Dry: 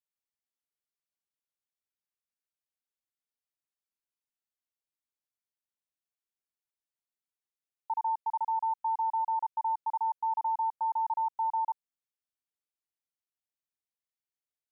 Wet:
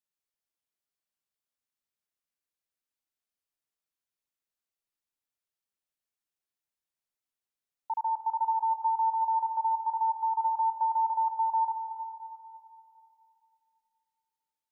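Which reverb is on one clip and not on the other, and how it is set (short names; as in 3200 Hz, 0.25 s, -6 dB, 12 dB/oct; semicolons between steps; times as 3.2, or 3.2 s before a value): digital reverb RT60 2.7 s, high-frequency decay 0.95×, pre-delay 95 ms, DRR 5 dB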